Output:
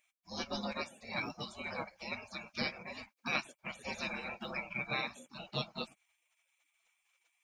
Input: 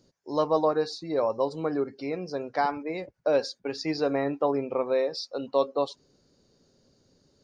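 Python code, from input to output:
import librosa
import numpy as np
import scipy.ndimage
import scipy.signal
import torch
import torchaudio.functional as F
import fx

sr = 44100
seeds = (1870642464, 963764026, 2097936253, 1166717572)

y = fx.spec_gate(x, sr, threshold_db=-30, keep='weak')
y = fx.small_body(y, sr, hz=(220.0, 540.0, 2300.0), ring_ms=20, db=14)
y = y * 10.0 ** (6.5 / 20.0)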